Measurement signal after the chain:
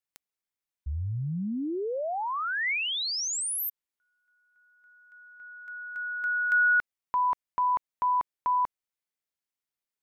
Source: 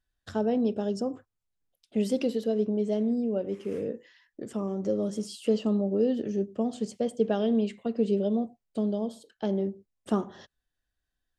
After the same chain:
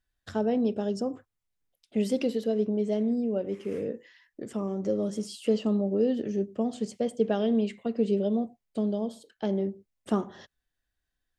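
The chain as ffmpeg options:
-af "equalizer=f=2100:t=o:w=0.46:g=3.5"

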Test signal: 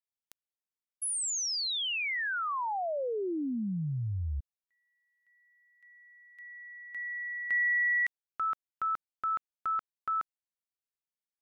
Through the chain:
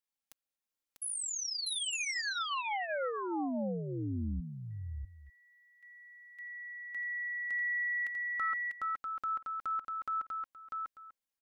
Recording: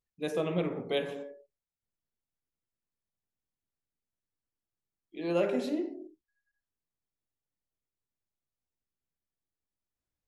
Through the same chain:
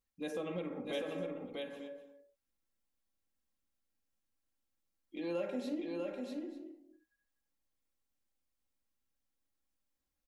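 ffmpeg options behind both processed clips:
-af "aecho=1:1:3.7:0.59,acompressor=threshold=0.0158:ratio=2.5:attack=0.22:release=505:knee=1:detection=peak,aecho=1:1:645|892:0.668|0.141"

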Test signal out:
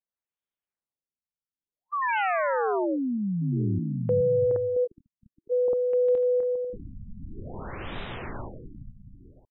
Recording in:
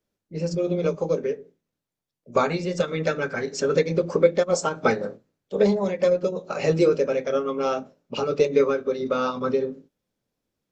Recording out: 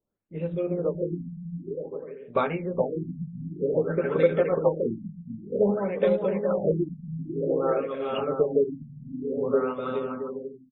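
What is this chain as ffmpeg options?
-af "aecho=1:1:420|672|823.2|913.9|968.4:0.631|0.398|0.251|0.158|0.1,afftfilt=real='re*lt(b*sr/1024,230*pow(4000/230,0.5+0.5*sin(2*PI*0.53*pts/sr)))':imag='im*lt(b*sr/1024,230*pow(4000/230,0.5+0.5*sin(2*PI*0.53*pts/sr)))':win_size=1024:overlap=0.75,volume=0.668"

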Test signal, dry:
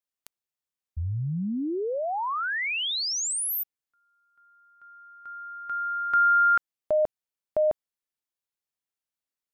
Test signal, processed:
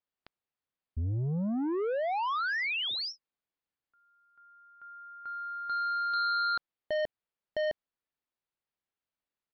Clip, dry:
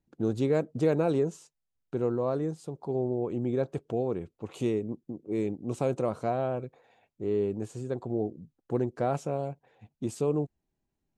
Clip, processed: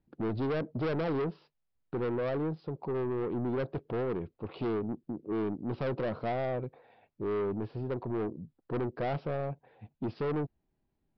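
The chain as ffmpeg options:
-af "aemphasis=mode=reproduction:type=75fm,aresample=11025,asoftclip=type=tanh:threshold=0.0282,aresample=44100,volume=1.33"

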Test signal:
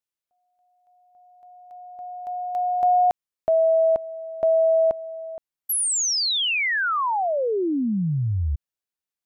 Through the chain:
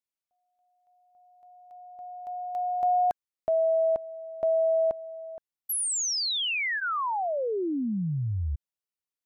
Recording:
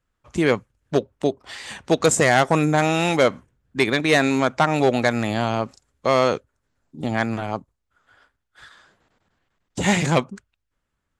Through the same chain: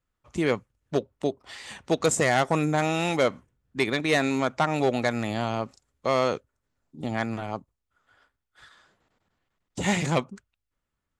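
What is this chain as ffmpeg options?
-af "bandreject=f=1600:w=20,volume=0.531"

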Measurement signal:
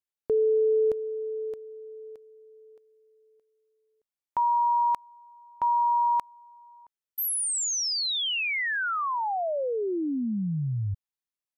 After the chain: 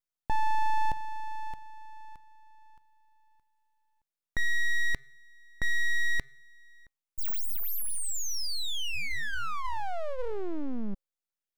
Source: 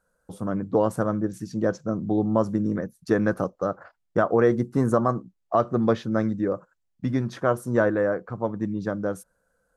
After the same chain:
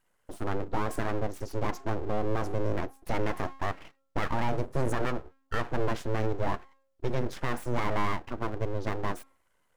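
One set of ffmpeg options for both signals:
-af "bandreject=f=269.9:t=h:w=4,bandreject=f=539.8:t=h:w=4,bandreject=f=809.7:t=h:w=4,bandreject=f=1079.6:t=h:w=4,bandreject=f=1349.5:t=h:w=4,alimiter=limit=0.15:level=0:latency=1:release=34,aeval=exprs='abs(val(0))':c=same"

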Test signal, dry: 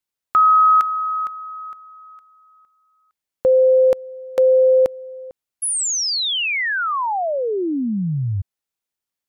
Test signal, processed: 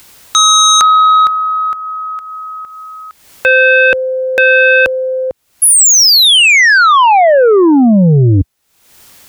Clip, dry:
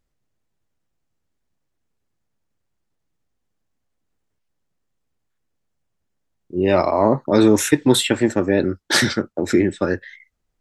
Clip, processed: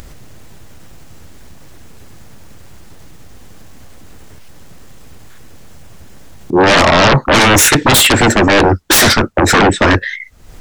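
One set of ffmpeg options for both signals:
-af "acompressor=mode=upward:threshold=0.02:ratio=2.5:attack=1.1:release=318:knee=2.83:detection=peak,equalizer=f=74:w=0.88:g=4,aeval=exprs='0.944*sin(PI/2*8.91*val(0)/0.944)':c=same,volume=0.596"

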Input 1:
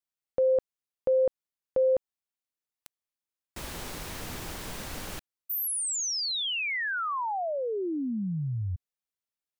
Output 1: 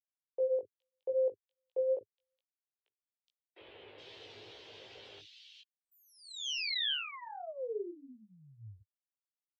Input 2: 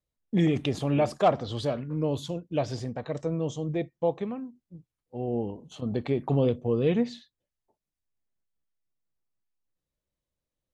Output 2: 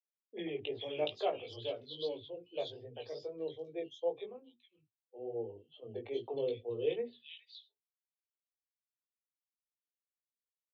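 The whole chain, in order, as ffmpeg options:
-filter_complex "[0:a]afftdn=nr=14:nf=-45,firequalizer=gain_entry='entry(100,0);entry(170,-23);entry(410,3);entry(620,-5);entry(1200,-13);entry(3100,9);entry(9400,-30)':delay=0.05:min_phase=1,flanger=delay=17:depth=2.8:speed=2.4,acrossover=split=130|980|2300[s0][s1][s2][s3];[s0]acrusher=bits=4:mix=0:aa=0.000001[s4];[s4][s1][s2][s3]amix=inputs=4:normalize=0,acrossover=split=300|2800[s5][s6][s7];[s5]adelay=40[s8];[s7]adelay=420[s9];[s8][s6][s9]amix=inputs=3:normalize=0,volume=0.668"

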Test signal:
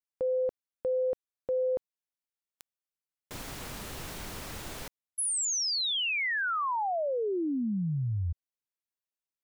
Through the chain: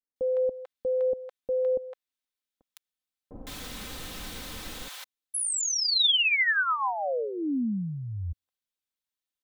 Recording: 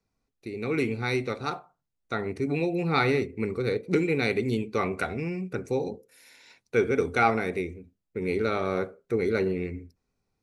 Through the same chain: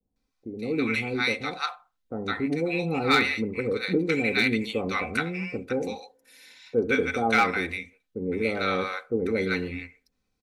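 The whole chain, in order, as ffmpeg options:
-filter_complex "[0:a]equalizer=f=3600:t=o:w=0.53:g=6,aecho=1:1:3.9:0.45,acrossover=split=760[s0][s1];[s1]adelay=160[s2];[s0][s2]amix=inputs=2:normalize=0,adynamicequalizer=threshold=0.00794:dfrequency=1900:dqfactor=0.88:tfrequency=1900:tqfactor=0.88:attack=5:release=100:ratio=0.375:range=2.5:mode=boostabove:tftype=bell,asoftclip=type=hard:threshold=0.237"

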